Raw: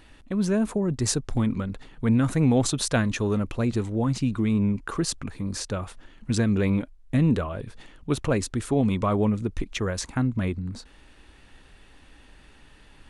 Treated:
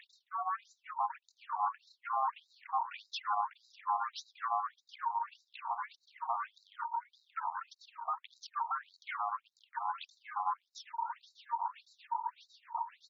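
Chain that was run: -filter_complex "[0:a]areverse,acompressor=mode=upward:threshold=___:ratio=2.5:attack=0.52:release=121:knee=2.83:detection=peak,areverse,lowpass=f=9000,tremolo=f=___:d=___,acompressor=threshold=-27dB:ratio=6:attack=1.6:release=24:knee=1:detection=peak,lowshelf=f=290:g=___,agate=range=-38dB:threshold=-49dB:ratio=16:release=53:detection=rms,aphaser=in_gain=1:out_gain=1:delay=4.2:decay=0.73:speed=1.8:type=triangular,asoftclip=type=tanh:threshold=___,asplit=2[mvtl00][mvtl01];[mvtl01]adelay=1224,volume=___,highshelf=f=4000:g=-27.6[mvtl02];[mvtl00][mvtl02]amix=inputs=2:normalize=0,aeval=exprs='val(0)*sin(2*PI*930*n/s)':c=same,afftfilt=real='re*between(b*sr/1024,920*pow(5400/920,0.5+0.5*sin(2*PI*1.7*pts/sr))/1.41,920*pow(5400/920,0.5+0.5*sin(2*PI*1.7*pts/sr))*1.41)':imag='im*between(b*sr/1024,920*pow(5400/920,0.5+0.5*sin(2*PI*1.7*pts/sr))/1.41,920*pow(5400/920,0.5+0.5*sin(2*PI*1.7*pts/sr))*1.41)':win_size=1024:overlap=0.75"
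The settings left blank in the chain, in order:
-32dB, 7.9, 0.89, 7.5, -24.5dB, -13dB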